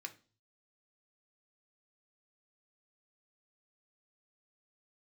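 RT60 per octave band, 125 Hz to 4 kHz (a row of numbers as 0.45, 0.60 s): 0.80, 0.45, 0.40, 0.35, 0.35, 0.40 s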